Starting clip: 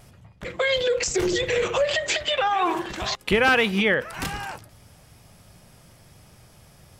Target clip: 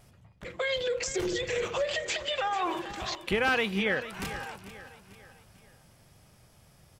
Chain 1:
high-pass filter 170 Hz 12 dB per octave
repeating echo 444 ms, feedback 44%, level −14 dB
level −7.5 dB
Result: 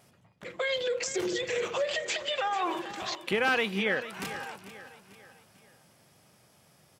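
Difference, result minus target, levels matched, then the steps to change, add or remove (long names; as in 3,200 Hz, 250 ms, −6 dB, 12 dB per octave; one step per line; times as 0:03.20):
125 Hz band −3.5 dB
remove: high-pass filter 170 Hz 12 dB per octave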